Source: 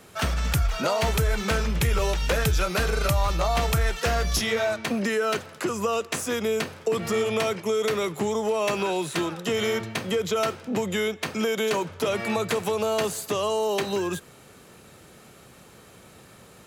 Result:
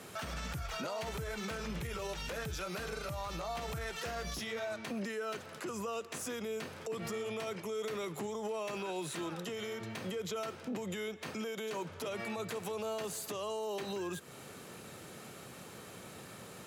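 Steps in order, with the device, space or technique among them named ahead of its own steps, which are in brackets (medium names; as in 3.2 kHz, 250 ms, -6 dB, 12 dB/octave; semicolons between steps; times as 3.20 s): podcast mastering chain (high-pass 97 Hz 12 dB/octave; de-esser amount 50%; compression 3:1, threshold -37 dBFS, peak gain reduction 12.5 dB; peak limiter -31.5 dBFS, peak gain reduction 10 dB; trim +1 dB; MP3 128 kbps 44.1 kHz)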